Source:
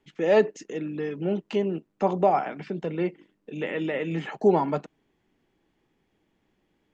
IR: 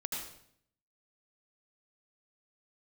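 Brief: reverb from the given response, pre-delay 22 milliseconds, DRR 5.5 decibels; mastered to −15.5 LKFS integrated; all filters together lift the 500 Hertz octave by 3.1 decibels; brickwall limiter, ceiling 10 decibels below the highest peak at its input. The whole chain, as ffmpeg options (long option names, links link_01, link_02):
-filter_complex "[0:a]equalizer=frequency=500:width_type=o:gain=4,alimiter=limit=-16dB:level=0:latency=1,asplit=2[link_01][link_02];[1:a]atrim=start_sample=2205,adelay=22[link_03];[link_02][link_03]afir=irnorm=-1:irlink=0,volume=-7.5dB[link_04];[link_01][link_04]amix=inputs=2:normalize=0,volume=11.5dB"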